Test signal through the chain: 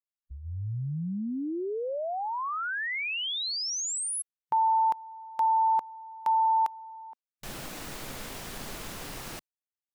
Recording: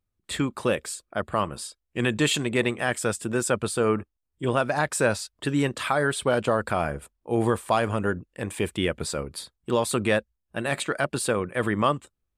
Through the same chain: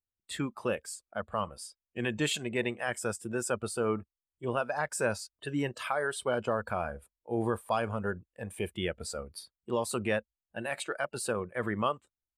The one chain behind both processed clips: spectral noise reduction 11 dB; gain -7 dB

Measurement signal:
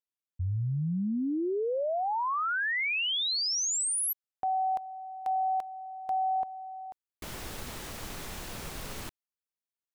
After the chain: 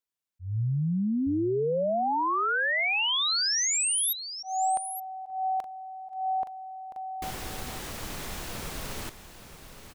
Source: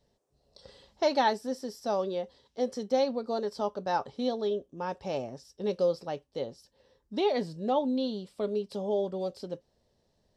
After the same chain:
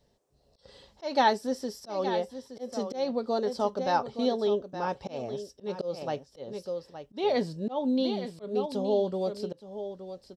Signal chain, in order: echo 0.87 s -11 dB; auto swell 0.203 s; gain +3 dB

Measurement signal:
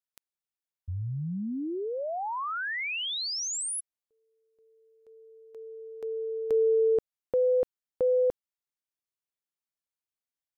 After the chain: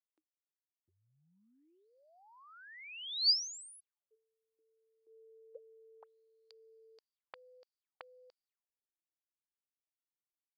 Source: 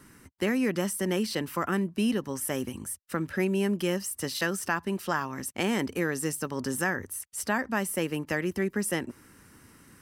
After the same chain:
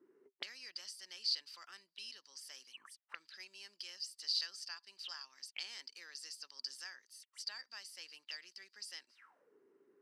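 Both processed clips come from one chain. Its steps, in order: weighting filter A; auto-wah 300–4700 Hz, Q 14, up, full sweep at -34.5 dBFS; gain +8.5 dB

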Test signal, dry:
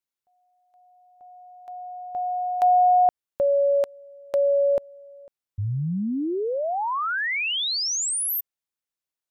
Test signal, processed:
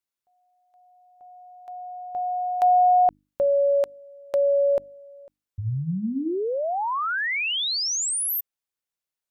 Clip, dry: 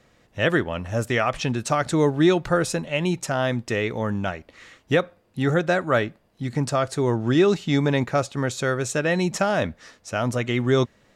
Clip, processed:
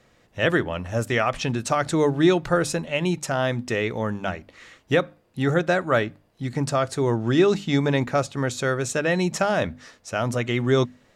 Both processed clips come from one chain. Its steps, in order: notches 50/100/150/200/250/300 Hz

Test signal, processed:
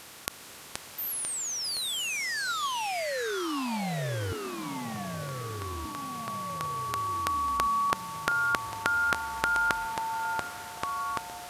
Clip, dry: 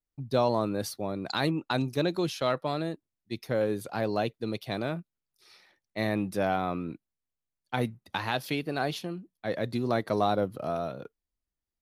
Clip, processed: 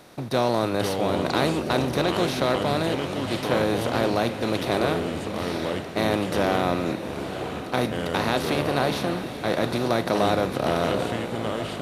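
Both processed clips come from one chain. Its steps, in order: per-bin compression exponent 0.4; diffused feedback echo 0.857 s, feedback 43%, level -10.5 dB; echoes that change speed 0.403 s, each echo -4 st, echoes 3, each echo -6 dB; gain -1 dB

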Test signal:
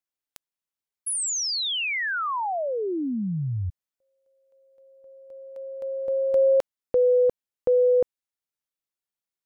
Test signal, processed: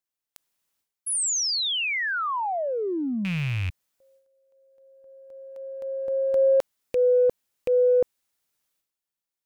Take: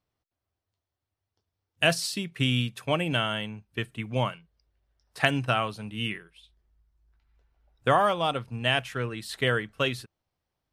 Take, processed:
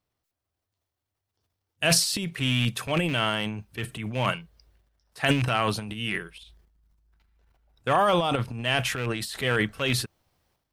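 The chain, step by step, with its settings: rattling part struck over -29 dBFS, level -23 dBFS; high shelf 6000 Hz +3 dB; transient shaper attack -4 dB, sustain +12 dB

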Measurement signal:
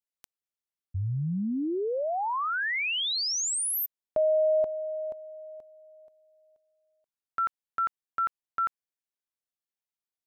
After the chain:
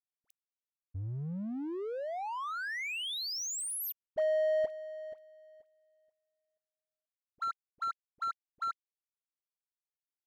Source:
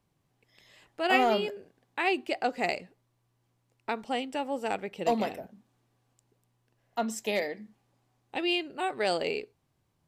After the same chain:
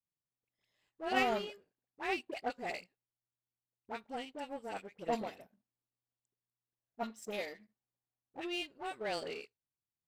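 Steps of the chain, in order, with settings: dispersion highs, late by 63 ms, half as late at 1100 Hz; power-law curve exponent 1.4; gain -4.5 dB

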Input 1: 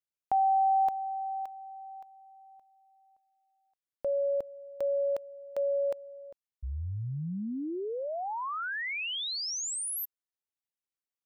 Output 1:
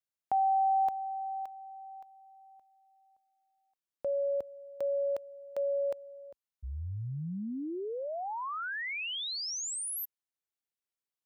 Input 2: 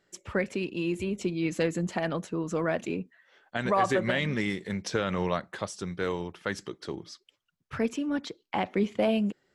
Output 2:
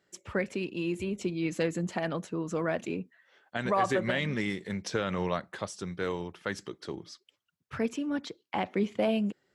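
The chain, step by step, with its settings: HPF 51 Hz; gain -2 dB

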